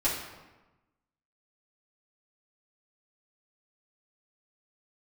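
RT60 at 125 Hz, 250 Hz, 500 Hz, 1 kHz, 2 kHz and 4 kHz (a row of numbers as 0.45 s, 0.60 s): 1.3 s, 1.3 s, 1.2 s, 1.1 s, 1.0 s, 0.80 s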